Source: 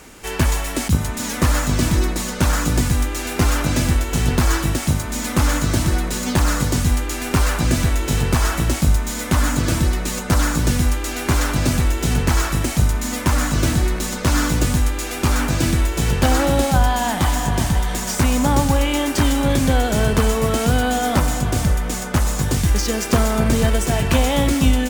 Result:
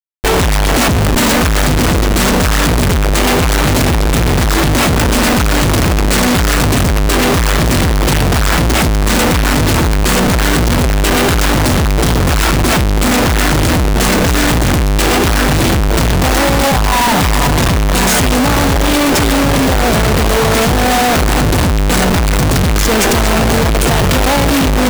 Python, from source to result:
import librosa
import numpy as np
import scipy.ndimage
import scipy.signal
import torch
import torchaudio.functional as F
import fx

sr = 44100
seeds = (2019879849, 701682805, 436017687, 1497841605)

y = fx.formant_shift(x, sr, semitones=2)
y = fx.schmitt(y, sr, flips_db=-27.5)
y = y * 10.0 ** (7.0 / 20.0)